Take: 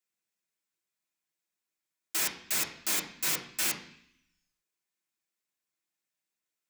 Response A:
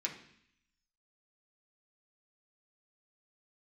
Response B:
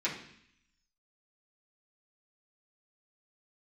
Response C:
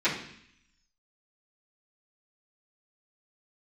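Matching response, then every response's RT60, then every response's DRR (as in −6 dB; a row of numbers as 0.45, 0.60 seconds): A; 0.65, 0.65, 0.65 seconds; −2.0, −9.5, −16.5 decibels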